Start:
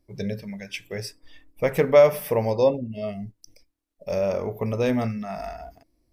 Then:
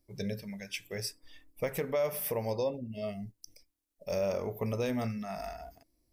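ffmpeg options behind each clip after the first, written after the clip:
-af "highshelf=f=4.9k:g=10,alimiter=limit=-16dB:level=0:latency=1:release=263,volume=-6.5dB"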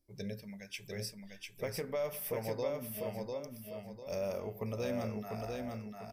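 -af "aecho=1:1:698|1396|2094|2792:0.668|0.221|0.0728|0.024,volume=-5.5dB"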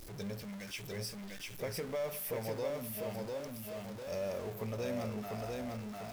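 -af "aeval=exprs='val(0)+0.5*0.01*sgn(val(0))':c=same,volume=-3dB"

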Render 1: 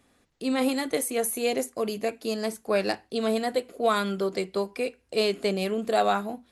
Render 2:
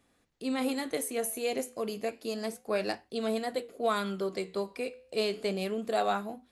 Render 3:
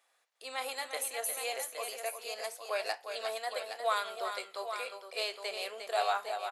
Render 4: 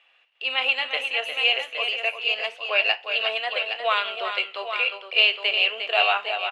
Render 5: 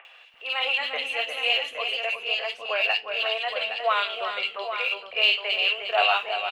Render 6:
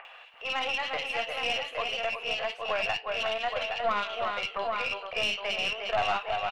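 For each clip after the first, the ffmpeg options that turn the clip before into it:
-af "flanger=delay=5.9:depth=9.1:regen=-83:speed=0.31:shape=sinusoidal,volume=-1dB"
-filter_complex "[0:a]highpass=f=630:w=0.5412,highpass=f=630:w=1.3066,asplit=2[a][b];[b]aecho=0:1:355|816:0.422|0.376[c];[a][c]amix=inputs=2:normalize=0"
-af "lowpass=f=2.8k:t=q:w=12,volume=6dB"
-filter_complex "[0:a]acompressor=mode=upward:threshold=-37dB:ratio=2.5,aphaser=in_gain=1:out_gain=1:delay=4.4:decay=0.21:speed=1.5:type=sinusoidal,acrossover=split=320|2300[a][b][c];[c]adelay=50[d];[a]adelay=340[e];[e][b][d]amix=inputs=3:normalize=0"
-af "equalizer=f=890:t=o:w=2.6:g=11.5,acompressor=threshold=-27dB:ratio=2,aeval=exprs='(tanh(7.08*val(0)+0.5)-tanh(0.5))/7.08':c=same,volume=-2.5dB"

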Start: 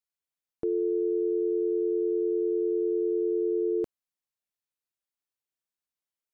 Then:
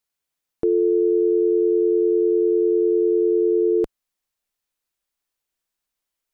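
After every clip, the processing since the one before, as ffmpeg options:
-af "asubboost=boost=3.5:cutoff=53,volume=9dB"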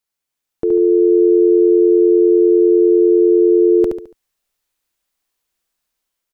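-af "dynaudnorm=f=300:g=5:m=6dB,aecho=1:1:71|142|213|284:0.562|0.202|0.0729|0.0262"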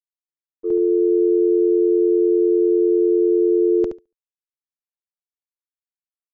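-af "agate=range=-33dB:threshold=-10dB:ratio=3:detection=peak,aresample=16000,aresample=44100,acompressor=threshold=-17dB:ratio=2"

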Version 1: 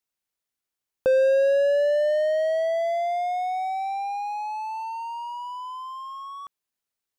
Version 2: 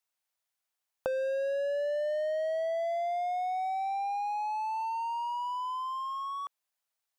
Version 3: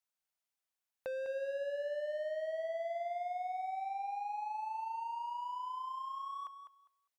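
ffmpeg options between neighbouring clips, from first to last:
-af "lowshelf=f=480:t=q:w=1.5:g=-9,acompressor=threshold=-31dB:ratio=6"
-filter_complex "[0:a]asoftclip=type=tanh:threshold=-27.5dB,asplit=2[a][b];[b]aecho=0:1:202|404|606:0.355|0.0674|0.0128[c];[a][c]amix=inputs=2:normalize=0,volume=-6dB"

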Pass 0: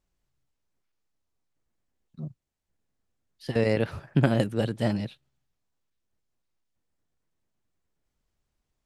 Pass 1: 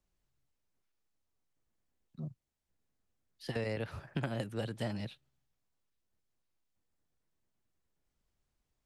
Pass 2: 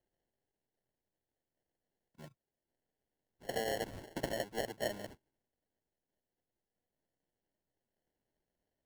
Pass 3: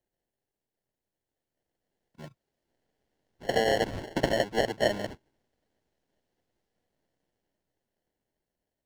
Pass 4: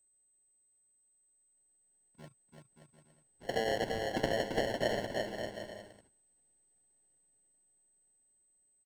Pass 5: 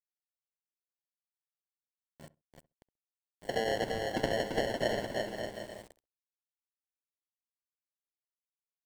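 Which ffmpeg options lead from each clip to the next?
-filter_complex "[0:a]acrossover=split=120|600[a][b][c];[a]acompressor=threshold=-40dB:ratio=4[d];[b]acompressor=threshold=-37dB:ratio=4[e];[c]acompressor=threshold=-37dB:ratio=4[f];[d][e][f]amix=inputs=3:normalize=0,volume=-3dB"
-filter_complex "[0:a]acrossover=split=390 2900:gain=0.1 1 0.2[a][b][c];[a][b][c]amix=inputs=3:normalize=0,acrusher=samples=36:mix=1:aa=0.000001,volume=4.5dB"
-filter_complex "[0:a]acrossover=split=6600[a][b];[a]dynaudnorm=f=400:g=11:m=11.5dB[c];[b]aeval=exprs='0.0112*(abs(mod(val(0)/0.0112+3,4)-2)-1)':c=same[d];[c][d]amix=inputs=2:normalize=0"
-af "aecho=1:1:340|578|744.6|861.2|942.9:0.631|0.398|0.251|0.158|0.1,aeval=exprs='val(0)+0.000794*sin(2*PI*8200*n/s)':c=same,volume=-7.5dB"
-filter_complex "[0:a]aeval=exprs='val(0)*gte(abs(val(0)),0.00335)':c=same,asplit=2[a][b];[b]adelay=66,lowpass=f=970:p=1,volume=-18.5dB,asplit=2[c][d];[d]adelay=66,lowpass=f=970:p=1,volume=0.18[e];[a][c][e]amix=inputs=3:normalize=0,volume=1dB"

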